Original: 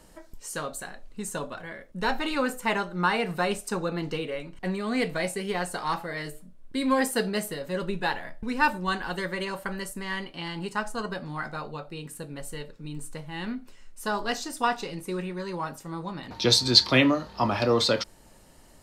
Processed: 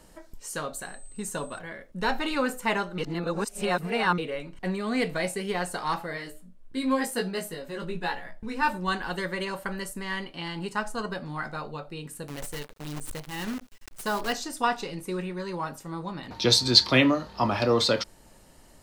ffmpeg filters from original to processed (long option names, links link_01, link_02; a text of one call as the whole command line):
ffmpeg -i in.wav -filter_complex "[0:a]asettb=1/sr,asplit=3[link_01][link_02][link_03];[link_01]atrim=end=0.824[link_04];[link_02]atrim=start=0.82:end=1.59,asetpts=PTS-STARTPTS,afade=type=in:duration=0.004:curve=qsin,afade=type=out:start_time=0.766:duration=0.004:curve=qsin,aeval=exprs='val(0)+0.00355*sin(2*PI*8200*n/s)':channel_layout=same[link_05];[link_03]atrim=start=1.586[link_06];[link_04][link_05]acrossfade=duration=0.004:curve1=hsin:curve2=qsin[link_07];[link_07][link_06]acrossfade=duration=0.004:curve1=qsin:curve2=hsin,asplit=3[link_08][link_09][link_10];[link_08]afade=type=out:start_time=6.16:duration=0.02[link_11];[link_09]flanger=delay=16.5:depth=2.5:speed=1.1,afade=type=in:start_time=6.16:duration=0.02,afade=type=out:start_time=8.68:duration=0.02[link_12];[link_10]afade=type=in:start_time=8.68:duration=0.02[link_13];[link_11][link_12][link_13]amix=inputs=3:normalize=0,asettb=1/sr,asplit=3[link_14][link_15][link_16];[link_14]atrim=end=12.284[link_17];[link_15]atrim=start=12.28:end=14.33,asetpts=PTS-STARTPTS,afade=type=in:duration=0.004:curve=qsin,afade=type=out:start_time=2.046:duration=0.004:curve=qsin,acrusher=bits=7:dc=4:mix=0:aa=0.000001[link_18];[link_16]atrim=start=14.326[link_19];[link_17][link_18]acrossfade=duration=0.004:curve1=hsin:curve2=qsin[link_20];[link_20][link_19]acrossfade=duration=0.004:curve1=qsin:curve2=hsin,asplit=3[link_21][link_22][link_23];[link_21]atrim=end=2.982[link_24];[link_22]atrim=start=2.978:end=4.182,asetpts=PTS-STARTPTS,areverse[link_25];[link_23]atrim=start=4.178[link_26];[link_24][link_25]acrossfade=duration=0.004:curve1=hsin:curve2=hsin[link_27];[link_27][link_26]acrossfade=duration=0.004:curve1=hsin:curve2=hsin" out.wav